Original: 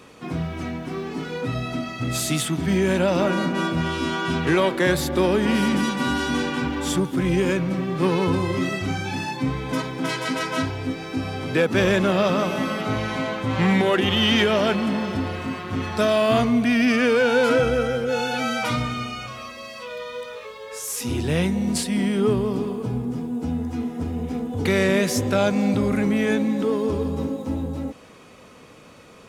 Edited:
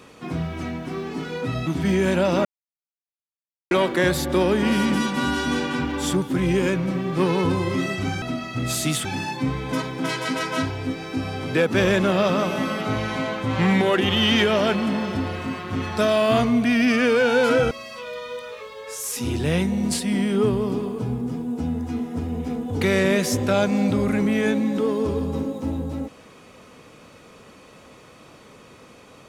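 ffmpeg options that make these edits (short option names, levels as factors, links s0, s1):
-filter_complex "[0:a]asplit=7[s0][s1][s2][s3][s4][s5][s6];[s0]atrim=end=1.672[s7];[s1]atrim=start=2.498:end=3.28,asetpts=PTS-STARTPTS,afade=t=out:st=0.778:d=0.004:c=hsin[s8];[s2]atrim=start=3.28:end=4.54,asetpts=PTS-STARTPTS,volume=0[s9];[s3]atrim=start=4.54:end=9.052,asetpts=PTS-STARTPTS,afade=t=in:d=0.004:c=hsin[s10];[s4]atrim=start=1.668:end=2.502[s11];[s5]atrim=start=9.048:end=17.712[s12];[s6]atrim=start=19.548[s13];[s8][s9][s10]concat=n=3:v=0:a=1[s14];[s7][s14]acrossfade=d=0.004:c1=hsin:c2=hsin[s15];[s15][s11]acrossfade=d=0.004:c1=hsin:c2=hsin[s16];[s16][s12]acrossfade=d=0.004:c1=hsin:c2=hsin[s17];[s17][s13]acrossfade=d=0.004:c1=hsin:c2=hsin"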